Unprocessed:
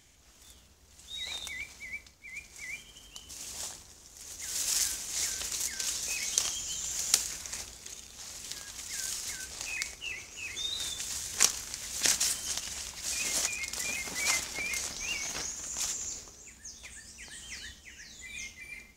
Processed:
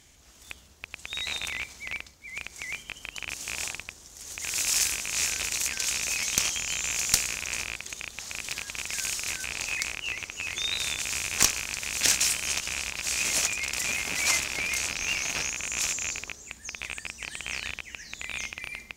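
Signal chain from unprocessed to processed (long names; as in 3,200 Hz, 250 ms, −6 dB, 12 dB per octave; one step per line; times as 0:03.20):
loose part that buzzes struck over −54 dBFS, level −22 dBFS
asymmetric clip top −18.5 dBFS
level +4 dB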